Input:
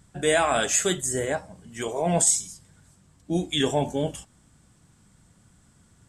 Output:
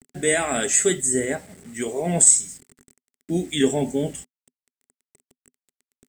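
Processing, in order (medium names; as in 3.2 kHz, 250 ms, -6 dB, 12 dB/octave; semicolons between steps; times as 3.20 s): bit crusher 8-bit; graphic EQ with 31 bands 160 Hz +4 dB, 250 Hz +12 dB, 400 Hz +9 dB, 1 kHz -7 dB, 2 kHz +9 dB, 8 kHz +12 dB; trim -3 dB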